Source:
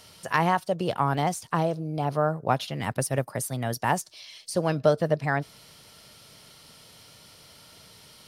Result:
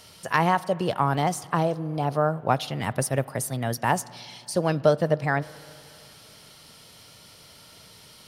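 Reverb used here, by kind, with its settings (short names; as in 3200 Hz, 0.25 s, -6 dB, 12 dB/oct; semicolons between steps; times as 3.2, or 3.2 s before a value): spring tank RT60 3 s, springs 34/44 ms, chirp 50 ms, DRR 19 dB; gain +1.5 dB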